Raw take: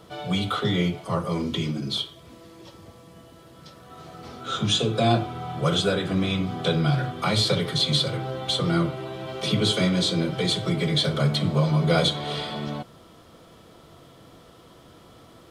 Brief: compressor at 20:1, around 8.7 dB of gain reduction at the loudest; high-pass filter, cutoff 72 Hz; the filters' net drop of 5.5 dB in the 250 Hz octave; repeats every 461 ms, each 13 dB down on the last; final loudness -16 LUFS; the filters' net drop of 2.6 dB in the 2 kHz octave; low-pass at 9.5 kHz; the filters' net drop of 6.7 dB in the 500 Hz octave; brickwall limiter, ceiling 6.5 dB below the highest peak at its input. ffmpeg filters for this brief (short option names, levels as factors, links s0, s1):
-af "highpass=72,lowpass=9500,equalizer=f=250:t=o:g=-8,equalizer=f=500:t=o:g=-6,equalizer=f=2000:t=o:g=-3,acompressor=threshold=0.0398:ratio=20,alimiter=level_in=1.12:limit=0.0631:level=0:latency=1,volume=0.891,aecho=1:1:461|922|1383:0.224|0.0493|0.0108,volume=8.41"